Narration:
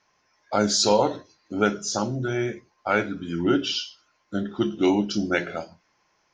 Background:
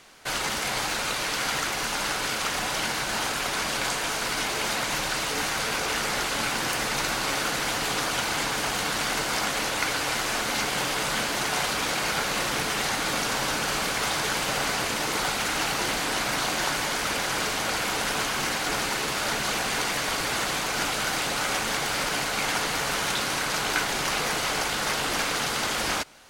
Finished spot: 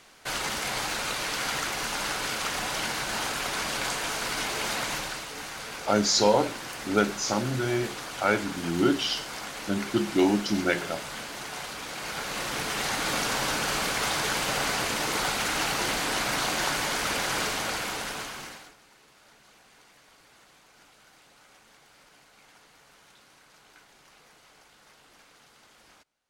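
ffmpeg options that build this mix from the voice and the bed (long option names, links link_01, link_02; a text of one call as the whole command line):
ffmpeg -i stem1.wav -i stem2.wav -filter_complex "[0:a]adelay=5350,volume=-1.5dB[link_01];[1:a]volume=7dB,afade=type=out:start_time=4.86:duration=0.4:silence=0.398107,afade=type=in:start_time=11.89:duration=1.24:silence=0.334965,afade=type=out:start_time=17.39:duration=1.35:silence=0.0354813[link_02];[link_01][link_02]amix=inputs=2:normalize=0" out.wav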